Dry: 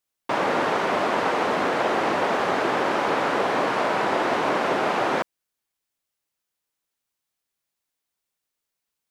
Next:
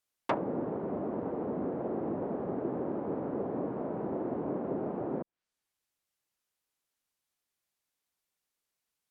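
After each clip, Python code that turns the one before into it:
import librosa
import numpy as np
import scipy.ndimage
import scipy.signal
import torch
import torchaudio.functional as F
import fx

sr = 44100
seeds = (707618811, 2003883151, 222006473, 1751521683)

y = fx.env_lowpass_down(x, sr, base_hz=330.0, full_db=-20.0)
y = y * librosa.db_to_amplitude(-2.5)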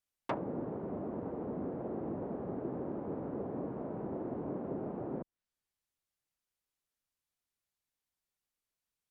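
y = fx.low_shelf(x, sr, hz=120.0, db=10.5)
y = y * librosa.db_to_amplitude(-6.0)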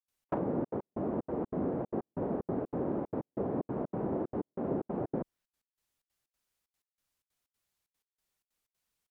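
y = fx.step_gate(x, sr, bpm=187, pattern='.xx.xxxx.x..xxx', floor_db=-60.0, edge_ms=4.5)
y = y * librosa.db_to_amplitude(6.0)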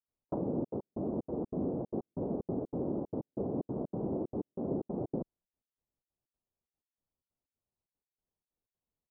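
y = scipy.ndimage.gaussian_filter1d(x, 10.0, mode='constant')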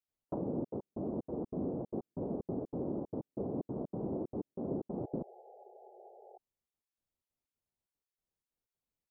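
y = fx.spec_paint(x, sr, seeds[0], shape='noise', start_s=4.94, length_s=1.44, low_hz=360.0, high_hz=850.0, level_db=-53.0)
y = y * librosa.db_to_amplitude(-2.5)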